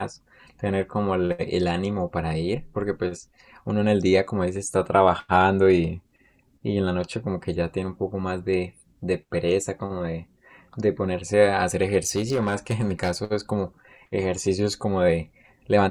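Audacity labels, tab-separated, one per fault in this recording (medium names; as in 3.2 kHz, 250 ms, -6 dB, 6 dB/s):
12.070000	13.110000	clipped -18 dBFS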